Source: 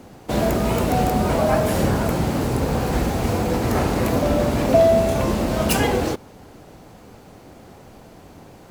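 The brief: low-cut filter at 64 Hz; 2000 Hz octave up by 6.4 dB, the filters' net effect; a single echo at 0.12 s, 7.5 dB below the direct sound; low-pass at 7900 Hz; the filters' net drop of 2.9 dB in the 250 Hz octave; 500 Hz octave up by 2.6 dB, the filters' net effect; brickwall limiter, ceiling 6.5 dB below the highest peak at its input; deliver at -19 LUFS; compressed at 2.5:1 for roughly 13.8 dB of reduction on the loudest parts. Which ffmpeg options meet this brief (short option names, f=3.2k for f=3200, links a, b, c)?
-af "highpass=64,lowpass=7.9k,equalizer=f=250:t=o:g=-5,equalizer=f=500:t=o:g=4,equalizer=f=2k:t=o:g=8,acompressor=threshold=-30dB:ratio=2.5,alimiter=limit=-21dB:level=0:latency=1,aecho=1:1:120:0.422,volume=10.5dB"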